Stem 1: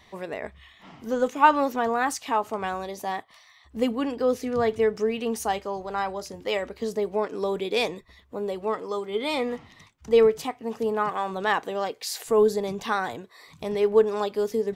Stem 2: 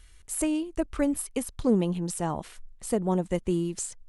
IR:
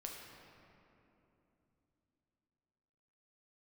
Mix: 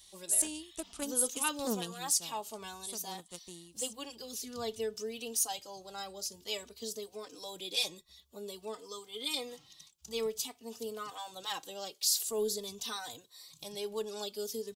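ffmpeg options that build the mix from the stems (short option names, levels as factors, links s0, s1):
-filter_complex "[0:a]asplit=2[s0][s1];[s1]adelay=3.2,afreqshift=0.51[s2];[s0][s2]amix=inputs=2:normalize=1,volume=0.211[s3];[1:a]aeval=exprs='0.224*(cos(1*acos(clip(val(0)/0.224,-1,1)))-cos(1*PI/2))+0.0447*(cos(3*acos(clip(val(0)/0.224,-1,1)))-cos(3*PI/2))':c=same,highpass=f=80:p=1,volume=0.316,afade=t=out:st=1.84:d=0.47:silence=0.334965[s4];[s3][s4]amix=inputs=2:normalize=0,aexciter=amount=5.4:drive=8.6:freq=3000"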